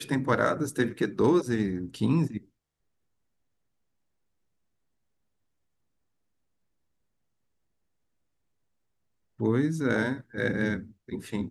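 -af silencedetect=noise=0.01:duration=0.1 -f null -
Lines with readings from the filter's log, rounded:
silence_start: 2.38
silence_end: 9.40 | silence_duration: 7.02
silence_start: 10.21
silence_end: 10.34 | silence_duration: 0.14
silence_start: 10.85
silence_end: 11.09 | silence_duration: 0.24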